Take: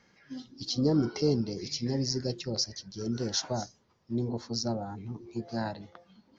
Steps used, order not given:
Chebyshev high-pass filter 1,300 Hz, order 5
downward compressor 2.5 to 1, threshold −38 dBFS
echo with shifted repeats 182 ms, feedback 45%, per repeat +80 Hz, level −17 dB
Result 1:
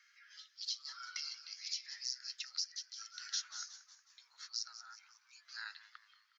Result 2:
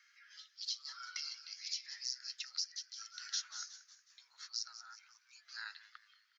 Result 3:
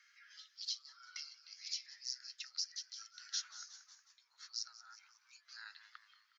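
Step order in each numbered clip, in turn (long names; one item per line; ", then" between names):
echo with shifted repeats, then Chebyshev high-pass filter, then downward compressor
Chebyshev high-pass filter, then echo with shifted repeats, then downward compressor
echo with shifted repeats, then downward compressor, then Chebyshev high-pass filter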